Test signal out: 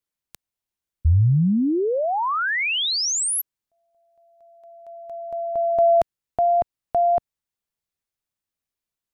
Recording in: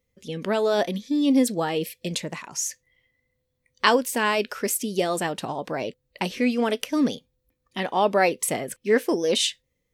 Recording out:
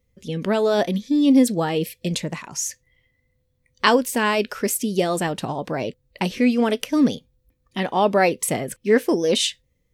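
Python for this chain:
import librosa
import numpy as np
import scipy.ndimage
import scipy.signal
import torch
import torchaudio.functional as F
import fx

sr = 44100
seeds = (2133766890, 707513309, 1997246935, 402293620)

y = fx.low_shelf(x, sr, hz=180.0, db=10.0)
y = F.gain(torch.from_numpy(y), 1.5).numpy()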